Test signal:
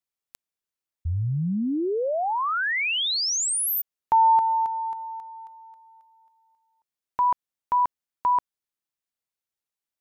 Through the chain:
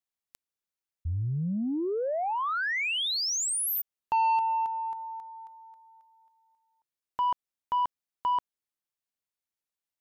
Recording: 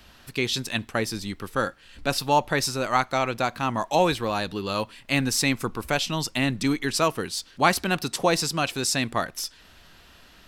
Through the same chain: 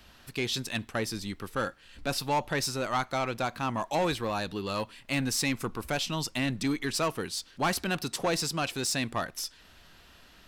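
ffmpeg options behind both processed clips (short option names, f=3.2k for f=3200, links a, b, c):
-af "asoftclip=type=tanh:threshold=-17.5dB,volume=-3.5dB"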